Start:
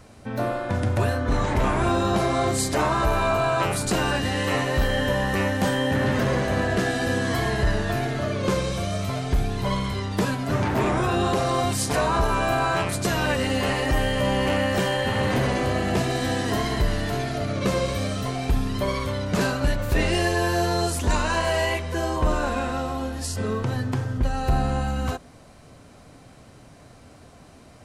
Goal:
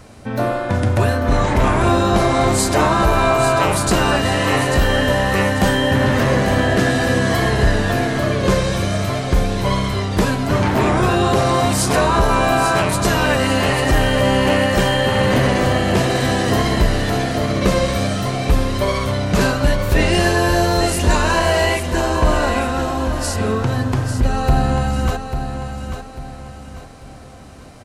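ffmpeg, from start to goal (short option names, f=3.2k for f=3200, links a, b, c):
-af "aecho=1:1:844|1688|2532|3376:0.376|0.139|0.0515|0.019,volume=6.5dB"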